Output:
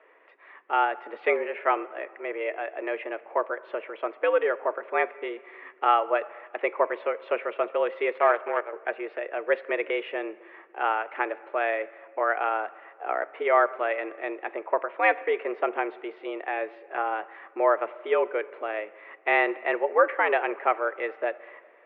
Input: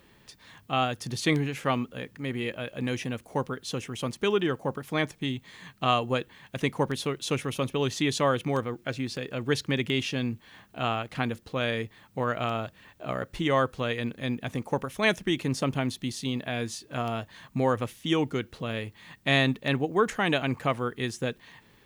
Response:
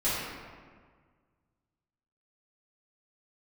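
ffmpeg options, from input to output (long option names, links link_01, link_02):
-filter_complex "[0:a]asettb=1/sr,asplit=3[link_01][link_02][link_03];[link_01]atrim=end=8.114[link_04];[link_02]atrim=start=8.11:end=8.73,asetpts=PTS-STARTPTS,afade=type=in:duration=0.004:curve=qsin,afade=type=out:start_time=0.616:duration=0.004:curve=qsin,aeval=exprs='0.251*(cos(1*acos(clip(val(0)/0.251,-1,1)))-cos(1*PI/2))+0.0282*(cos(7*acos(clip(val(0)/0.251,-1,1)))-cos(7*PI/2))':channel_layout=same[link_05];[link_03]atrim=start=8.726[link_06];[link_04][link_05]acrossfade=duration=0.004:curve1=hsin:curve2=qsin[link_07];[link_07][link_06]acrossfade=duration=0.004:curve1=qsin:curve2=hsin,asplit=2[link_08][link_09];[1:a]atrim=start_sample=2205[link_10];[link_09][link_10]afir=irnorm=-1:irlink=0,volume=-27dB[link_11];[link_08][link_11]amix=inputs=2:normalize=0,highpass=frequency=320:width_type=q:width=0.5412,highpass=frequency=320:width_type=q:width=1.307,lowpass=frequency=2200:width_type=q:width=0.5176,lowpass=frequency=2200:width_type=q:width=0.7071,lowpass=frequency=2200:width_type=q:width=1.932,afreqshift=100,volume=4dB"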